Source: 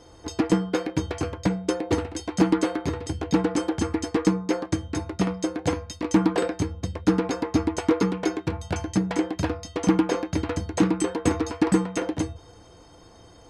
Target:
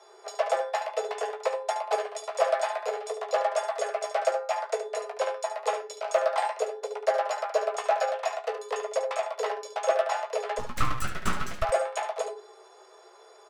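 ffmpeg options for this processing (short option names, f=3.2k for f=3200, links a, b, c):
-filter_complex "[0:a]flanger=delay=3.8:depth=6.5:regen=-73:speed=0.56:shape=sinusoidal,afreqshift=340,asplit=3[a][b][c];[a]afade=t=out:st=10.58:d=0.02[d];[b]aeval=exprs='abs(val(0))':c=same,afade=t=in:st=10.58:d=0.02,afade=t=out:st=11.62:d=0.02[e];[c]afade=t=in:st=11.62:d=0.02[f];[d][e][f]amix=inputs=3:normalize=0,asplit=2[g][h];[h]aecho=0:1:16|72:0.422|0.335[i];[g][i]amix=inputs=2:normalize=0"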